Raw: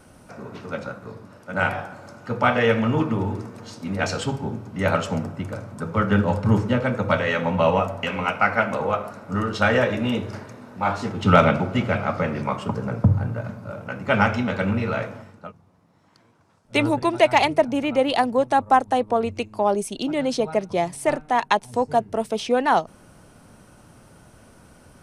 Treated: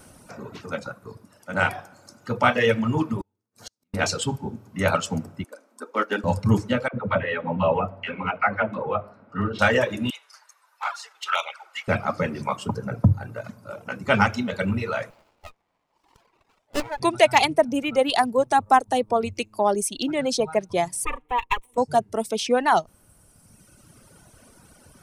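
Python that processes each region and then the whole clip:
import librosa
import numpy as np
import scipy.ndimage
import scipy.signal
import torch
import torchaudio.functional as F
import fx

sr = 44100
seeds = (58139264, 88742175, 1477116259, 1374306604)

y = fx.chain(x, sr, fx.highpass(hz=44.0, slope=24),
    fx.high_shelf(hz=3100.0, db=6.5),
    fx.gate_flip(shuts_db=-27.0, range_db=-40), at=(3.21, 3.94))
y = fx.chain(y, sr, fx.brickwall_highpass(low_hz=220.0),
    fx.upward_expand(threshold_db=-33.0, expansion=1.5), at=(5.44, 6.24))
y = fx.chain(y, sr, fx.air_absorb(metres=410.0),
    fx.dispersion(late='lows', ms=61.0, hz=580.0), at=(6.88, 9.59))
y = fx.chain(y, sr, fx.highpass(hz=920.0, slope=24),
    fx.env_flanger(rest_ms=10.0, full_db=-16.0), at=(10.1, 11.88))
y = fx.chain(y, sr, fx.law_mismatch(coded='mu'),
    fx.bandpass_edges(low_hz=790.0, high_hz=3200.0),
    fx.running_max(window=17), at=(15.1, 17.0))
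y = fx.chain(y, sr, fx.lower_of_two(delay_ms=4.1),
    fx.lowpass(hz=3200.0, slope=6),
    fx.fixed_phaser(hz=1000.0, stages=8), at=(21.05, 21.78))
y = fx.dereverb_blind(y, sr, rt60_s=1.7)
y = fx.high_shelf(y, sr, hz=4900.0, db=9.5)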